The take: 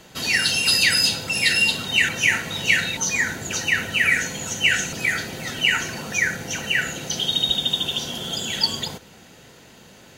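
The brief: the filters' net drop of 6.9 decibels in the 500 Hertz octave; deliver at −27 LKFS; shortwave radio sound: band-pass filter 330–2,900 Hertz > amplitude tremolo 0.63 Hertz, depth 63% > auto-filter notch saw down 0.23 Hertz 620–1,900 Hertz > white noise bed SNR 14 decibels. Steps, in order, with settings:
band-pass filter 330–2,900 Hz
parametric band 500 Hz −7.5 dB
amplitude tremolo 0.63 Hz, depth 63%
auto-filter notch saw down 0.23 Hz 620–1,900 Hz
white noise bed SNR 14 dB
level +2.5 dB

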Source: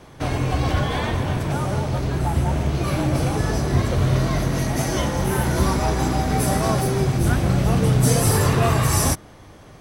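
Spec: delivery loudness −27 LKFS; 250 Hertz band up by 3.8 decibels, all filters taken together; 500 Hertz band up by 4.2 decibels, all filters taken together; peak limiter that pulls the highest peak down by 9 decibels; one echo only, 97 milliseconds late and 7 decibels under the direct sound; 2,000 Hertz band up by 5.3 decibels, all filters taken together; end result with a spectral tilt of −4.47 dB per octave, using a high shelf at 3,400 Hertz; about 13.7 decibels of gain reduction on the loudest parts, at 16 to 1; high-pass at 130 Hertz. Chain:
high-pass filter 130 Hz
parametric band 250 Hz +5 dB
parametric band 500 Hz +3.5 dB
parametric band 2,000 Hz +4 dB
high-shelf EQ 3,400 Hz +8.5 dB
downward compressor 16 to 1, threshold −25 dBFS
brickwall limiter −25 dBFS
single-tap delay 97 ms −7 dB
level +6 dB

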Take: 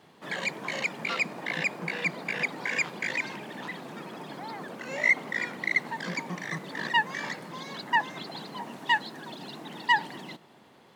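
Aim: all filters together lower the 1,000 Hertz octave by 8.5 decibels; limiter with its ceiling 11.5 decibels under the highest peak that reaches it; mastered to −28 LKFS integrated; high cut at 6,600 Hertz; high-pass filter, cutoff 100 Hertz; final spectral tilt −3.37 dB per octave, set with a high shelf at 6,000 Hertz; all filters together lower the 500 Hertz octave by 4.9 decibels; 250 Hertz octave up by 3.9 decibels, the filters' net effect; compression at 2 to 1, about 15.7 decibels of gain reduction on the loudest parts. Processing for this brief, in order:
high-pass filter 100 Hz
low-pass filter 6,600 Hz
parametric band 250 Hz +7.5 dB
parametric band 500 Hz −6.5 dB
parametric band 1,000 Hz −8 dB
high-shelf EQ 6,000 Hz −3 dB
downward compressor 2 to 1, threshold −50 dBFS
level +21 dB
brickwall limiter −19 dBFS

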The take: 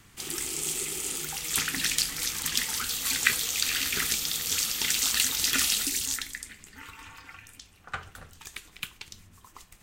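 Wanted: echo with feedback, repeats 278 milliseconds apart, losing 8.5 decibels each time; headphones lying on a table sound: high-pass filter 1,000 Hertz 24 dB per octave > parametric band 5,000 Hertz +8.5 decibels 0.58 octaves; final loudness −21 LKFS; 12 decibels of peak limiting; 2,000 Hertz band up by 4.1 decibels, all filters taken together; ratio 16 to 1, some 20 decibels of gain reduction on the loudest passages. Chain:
parametric band 2,000 Hz +4.5 dB
downward compressor 16 to 1, threshold −35 dBFS
brickwall limiter −27 dBFS
high-pass filter 1,000 Hz 24 dB per octave
parametric band 5,000 Hz +8.5 dB 0.58 octaves
repeating echo 278 ms, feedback 38%, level −8.5 dB
level +15 dB

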